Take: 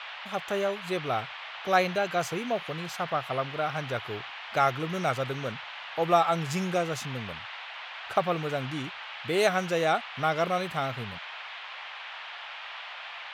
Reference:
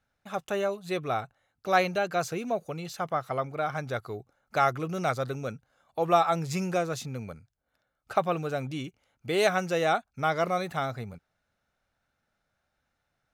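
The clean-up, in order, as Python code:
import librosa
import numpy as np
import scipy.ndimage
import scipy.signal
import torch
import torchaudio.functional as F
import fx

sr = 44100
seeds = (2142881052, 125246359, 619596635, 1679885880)

y = fx.noise_reduce(x, sr, print_start_s=11.56, print_end_s=12.06, reduce_db=30.0)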